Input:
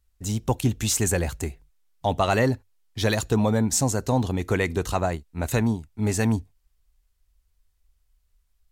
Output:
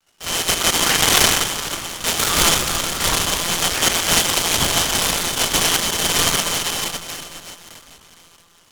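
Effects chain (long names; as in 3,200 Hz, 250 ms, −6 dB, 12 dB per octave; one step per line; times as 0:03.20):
band-splitting scrambler in four parts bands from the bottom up 2413
parametric band 1,500 Hz +12 dB 1.3 octaves
0:03.13–0:03.63: downward compressor, threshold −21 dBFS, peak gain reduction 7 dB
dense smooth reverb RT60 4.2 s, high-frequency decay 0.8×, DRR −3 dB
one-pitch LPC vocoder at 8 kHz 170 Hz
0:00.74–0:01.42: high-shelf EQ 3,100 Hz +7 dB
buffer that repeats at 0:00.33/0:01.88/0:06.31/0:07.70, samples 2,048, times 1
short delay modulated by noise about 3,000 Hz, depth 0.074 ms
level −1 dB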